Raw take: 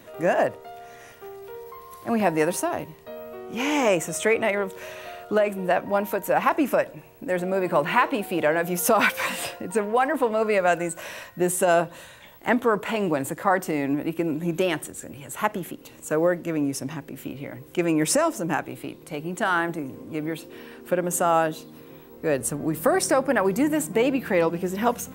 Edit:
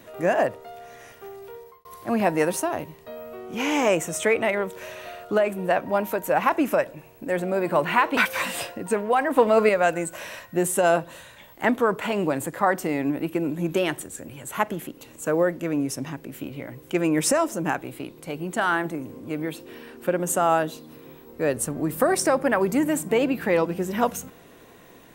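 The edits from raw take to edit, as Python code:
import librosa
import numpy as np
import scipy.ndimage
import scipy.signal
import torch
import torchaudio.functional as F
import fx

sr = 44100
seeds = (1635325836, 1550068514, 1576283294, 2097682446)

y = fx.edit(x, sr, fx.fade_out_span(start_s=1.33, length_s=0.52, curve='qsin'),
    fx.cut(start_s=8.17, length_s=0.84),
    fx.clip_gain(start_s=10.21, length_s=0.32, db=5.0), tone=tone)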